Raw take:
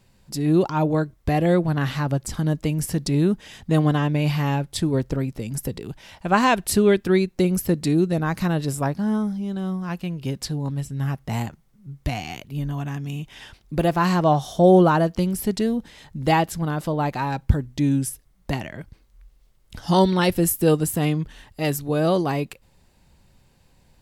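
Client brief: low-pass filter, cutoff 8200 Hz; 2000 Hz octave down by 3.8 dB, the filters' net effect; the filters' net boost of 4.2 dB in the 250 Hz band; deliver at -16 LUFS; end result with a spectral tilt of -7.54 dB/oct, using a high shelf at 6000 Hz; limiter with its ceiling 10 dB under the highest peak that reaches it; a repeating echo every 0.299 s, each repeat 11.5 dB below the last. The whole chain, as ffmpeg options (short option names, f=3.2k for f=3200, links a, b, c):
-af "lowpass=8.2k,equalizer=f=250:t=o:g=6.5,equalizer=f=2k:t=o:g=-5.5,highshelf=f=6k:g=3.5,alimiter=limit=-11.5dB:level=0:latency=1,aecho=1:1:299|598|897:0.266|0.0718|0.0194,volume=6.5dB"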